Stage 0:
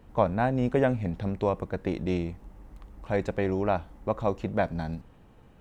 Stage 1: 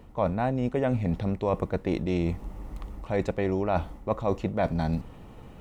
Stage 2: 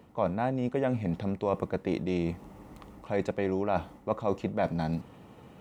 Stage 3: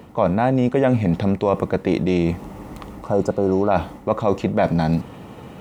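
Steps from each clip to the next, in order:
notch filter 1,600 Hz, Q 8.8; reversed playback; downward compressor 6 to 1, threshold −32 dBFS, peak gain reduction 14 dB; reversed playback; level +9 dB
high-pass filter 120 Hz 12 dB per octave; level −2 dB
in parallel at +2 dB: brickwall limiter −23.5 dBFS, peak gain reduction 10.5 dB; on the sum: healed spectral selection 0:03.07–0:03.69, 1,500–4,600 Hz before; level +6 dB

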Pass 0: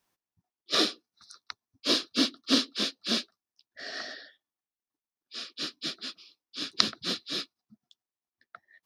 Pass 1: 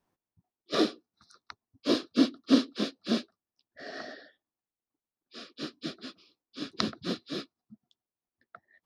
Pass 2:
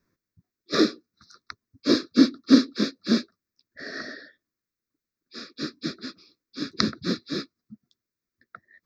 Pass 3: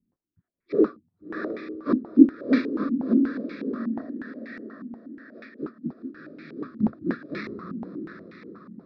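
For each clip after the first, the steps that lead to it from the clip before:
tilt shelving filter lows +8 dB, about 1,400 Hz; level −2.5 dB
phaser with its sweep stopped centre 3,000 Hz, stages 6; level +8 dB
feedback delay with all-pass diffusion 672 ms, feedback 44%, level −5 dB; low-pass on a step sequencer 8.3 Hz 230–2,200 Hz; level −6 dB

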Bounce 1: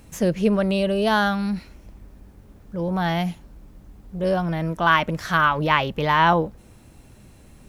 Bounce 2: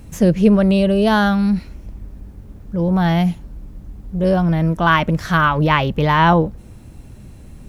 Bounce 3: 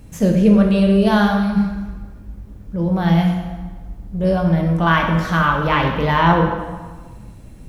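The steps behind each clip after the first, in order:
low-shelf EQ 300 Hz +9.5 dB; level +2 dB
dense smooth reverb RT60 1.4 s, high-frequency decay 0.75×, DRR 1 dB; level −3.5 dB

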